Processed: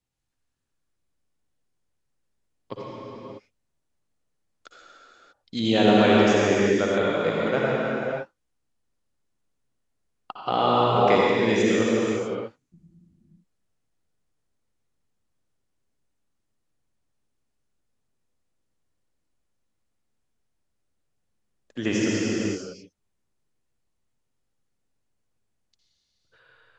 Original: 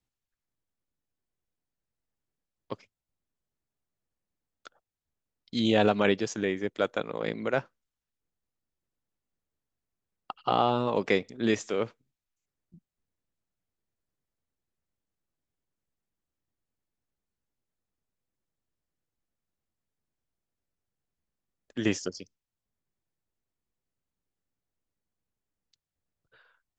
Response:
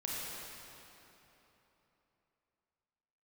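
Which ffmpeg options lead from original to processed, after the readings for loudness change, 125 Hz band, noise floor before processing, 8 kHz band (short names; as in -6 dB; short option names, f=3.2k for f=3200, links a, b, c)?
+6.5 dB, +7.5 dB, under -85 dBFS, n/a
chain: -filter_complex "[1:a]atrim=start_sample=2205,afade=t=out:st=0.38:d=0.01,atrim=end_sample=17199,asetrate=22491,aresample=44100[a];[0:a][a]afir=irnorm=-1:irlink=0"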